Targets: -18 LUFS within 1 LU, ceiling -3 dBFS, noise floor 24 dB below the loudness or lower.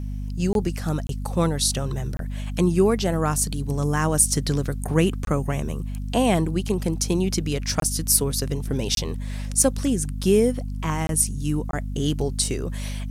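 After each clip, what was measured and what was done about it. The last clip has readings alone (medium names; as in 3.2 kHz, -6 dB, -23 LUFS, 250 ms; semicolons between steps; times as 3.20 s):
dropouts 8; longest dropout 22 ms; hum 50 Hz; highest harmonic 250 Hz; hum level -27 dBFS; loudness -23.5 LUFS; peak level -4.0 dBFS; loudness target -18.0 LUFS
-> interpolate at 0.53/1.07/2.17/5.25/7.80/8.95/11.07/11.71 s, 22 ms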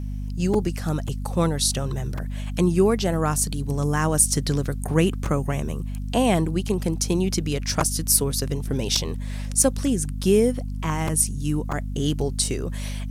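dropouts 0; hum 50 Hz; highest harmonic 250 Hz; hum level -27 dBFS
-> de-hum 50 Hz, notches 5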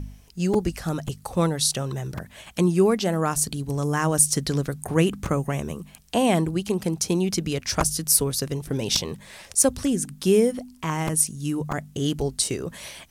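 hum not found; loudness -23.5 LUFS; peak level -4.5 dBFS; loudness target -18.0 LUFS
-> trim +5.5 dB; peak limiter -3 dBFS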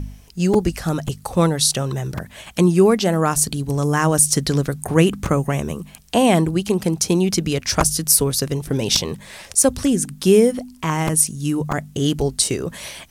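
loudness -18.5 LUFS; peak level -3.0 dBFS; noise floor -45 dBFS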